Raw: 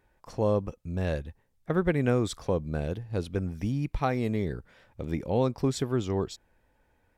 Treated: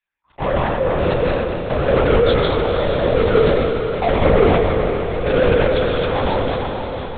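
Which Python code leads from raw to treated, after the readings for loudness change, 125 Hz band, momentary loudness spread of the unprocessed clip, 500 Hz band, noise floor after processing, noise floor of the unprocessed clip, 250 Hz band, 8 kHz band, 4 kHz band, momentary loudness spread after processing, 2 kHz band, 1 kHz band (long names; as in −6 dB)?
+12.0 dB, +8.0 dB, 10 LU, +15.0 dB, −54 dBFS, −70 dBFS, +8.0 dB, below −30 dB, +16.5 dB, 7 LU, +16.0 dB, +15.5 dB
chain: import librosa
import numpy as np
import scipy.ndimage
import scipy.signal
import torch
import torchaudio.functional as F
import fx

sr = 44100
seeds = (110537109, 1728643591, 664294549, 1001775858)

p1 = fx.peak_eq(x, sr, hz=1600.0, db=-13.0, octaves=1.6)
p2 = fx.resonator_bank(p1, sr, root=38, chord='minor', decay_s=0.23)
p3 = fx.filter_lfo_highpass(p2, sr, shape='saw_down', hz=0.91, low_hz=360.0, high_hz=2000.0, q=2.3)
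p4 = fx.fuzz(p3, sr, gain_db=47.0, gate_db=-55.0)
p5 = p3 + (p4 * librosa.db_to_amplitude(-9.0))
p6 = fx.rev_plate(p5, sr, seeds[0], rt60_s=1.4, hf_ratio=0.75, predelay_ms=115, drr_db=-1.5)
p7 = fx.lpc_vocoder(p6, sr, seeds[1], excitation='whisper', order=10)
p8 = p7 + fx.echo_diffused(p7, sr, ms=479, feedback_pct=52, wet_db=-6.0, dry=0)
p9 = fx.sustainer(p8, sr, db_per_s=21.0)
y = p9 * librosa.db_to_amplitude(4.5)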